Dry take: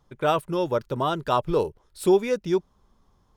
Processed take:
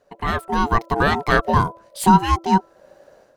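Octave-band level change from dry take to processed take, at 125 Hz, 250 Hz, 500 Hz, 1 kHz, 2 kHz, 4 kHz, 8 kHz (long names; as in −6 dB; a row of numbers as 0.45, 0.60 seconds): +10.0, +6.5, −2.5, +10.0, +14.0, +5.5, +8.5 decibels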